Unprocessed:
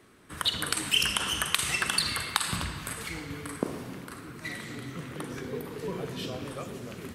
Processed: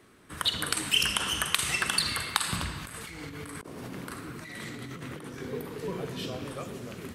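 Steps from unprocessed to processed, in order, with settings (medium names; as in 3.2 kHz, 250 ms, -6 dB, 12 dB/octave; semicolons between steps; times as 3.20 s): 2.81–5.41 s: compressor with a negative ratio -41 dBFS, ratio -1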